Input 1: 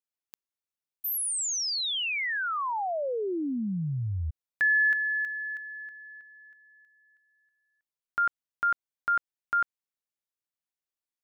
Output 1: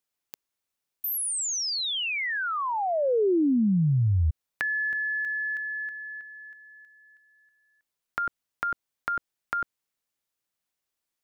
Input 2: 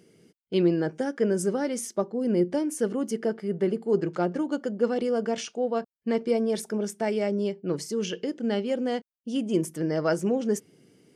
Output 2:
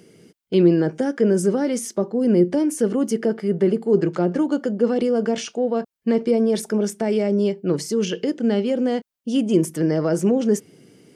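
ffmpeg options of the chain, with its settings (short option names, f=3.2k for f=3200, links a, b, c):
-filter_complex "[0:a]acrossover=split=490[a][b];[b]acompressor=threshold=-37dB:ratio=6:attack=5.6:release=39:knee=2.83:detection=peak[c];[a][c]amix=inputs=2:normalize=0,volume=8dB"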